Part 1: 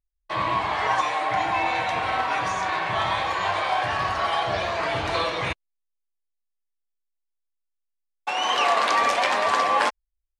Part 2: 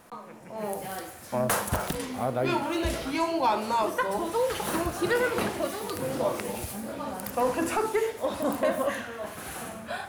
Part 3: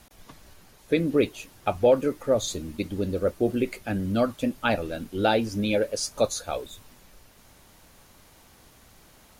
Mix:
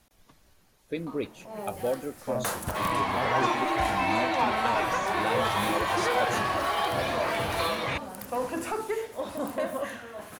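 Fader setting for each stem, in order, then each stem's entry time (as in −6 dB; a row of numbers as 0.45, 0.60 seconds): −3.5, −4.5, −10.0 decibels; 2.45, 0.95, 0.00 seconds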